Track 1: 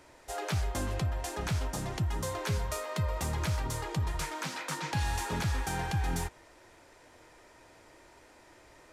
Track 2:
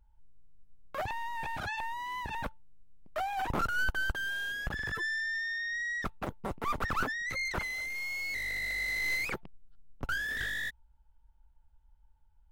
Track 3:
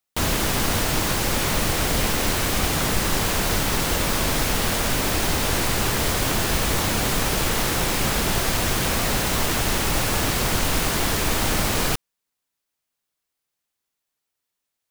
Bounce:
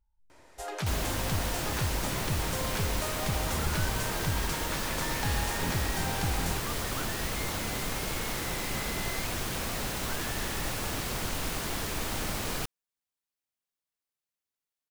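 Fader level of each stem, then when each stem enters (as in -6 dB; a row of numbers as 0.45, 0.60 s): -1.0, -11.0, -11.0 dB; 0.30, 0.00, 0.70 s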